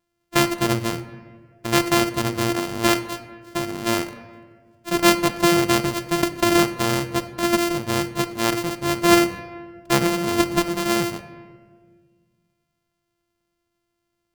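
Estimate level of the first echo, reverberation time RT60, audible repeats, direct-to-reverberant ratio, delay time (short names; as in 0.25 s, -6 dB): none, 1.6 s, none, 10.5 dB, none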